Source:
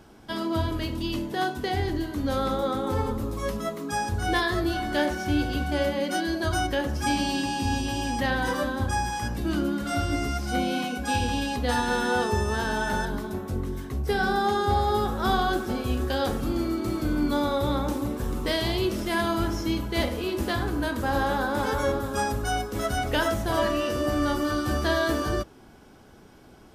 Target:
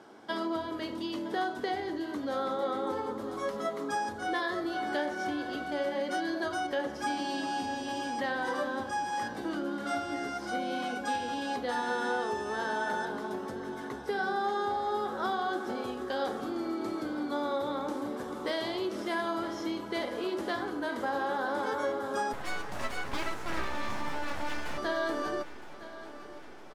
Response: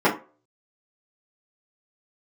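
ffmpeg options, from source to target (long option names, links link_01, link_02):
-filter_complex "[0:a]lowpass=11000,equalizer=frequency=2600:width_type=o:width=0.25:gain=-6.5,acompressor=threshold=-30dB:ratio=4,highpass=330,highshelf=frequency=4400:gain=-10,asettb=1/sr,asplit=3[link_01][link_02][link_03];[link_01]atrim=end=22.334[link_04];[link_02]atrim=start=22.33:end=24.78,asetpts=PTS-STARTPTS,afade=type=in:duration=0.004:curve=qsin,afade=type=out:start_time=2.446:duration=0.004:curve=qsin,aeval=exprs='abs(val(0))':channel_layout=same[link_05];[link_03]atrim=start=24.776[link_06];[link_04][link_05]acrossfade=duration=0.004:curve1=hsin:curve2=qsin[link_07];[link_07][link_06]acrossfade=duration=0.004:curve1=qsin:curve2=hsin,aecho=1:1:963|1926|2889|3852|4815|5778:0.168|0.101|0.0604|0.0363|0.0218|0.0131,volume=2.5dB"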